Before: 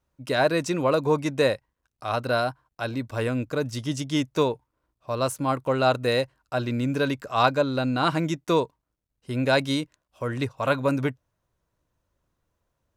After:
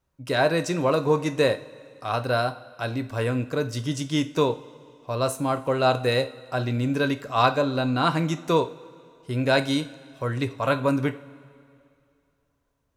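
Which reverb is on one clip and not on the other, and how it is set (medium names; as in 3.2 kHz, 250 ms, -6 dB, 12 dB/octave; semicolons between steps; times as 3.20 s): two-slope reverb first 0.35 s, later 2.5 s, from -18 dB, DRR 8 dB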